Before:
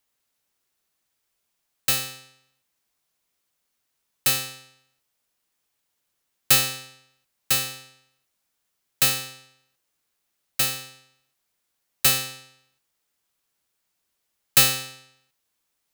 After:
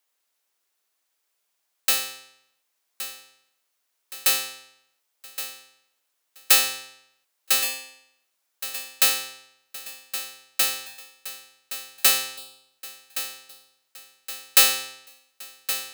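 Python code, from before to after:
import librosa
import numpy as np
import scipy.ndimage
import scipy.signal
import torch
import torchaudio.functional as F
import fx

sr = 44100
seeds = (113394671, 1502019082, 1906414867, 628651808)

y = scipy.signal.sosfilt(scipy.signal.butter(2, 400.0, 'highpass', fs=sr, output='sos'), x)
y = fx.echo_feedback(y, sr, ms=1119, feedback_pct=51, wet_db=-12)
y = y * 10.0 ** (1.0 / 20.0)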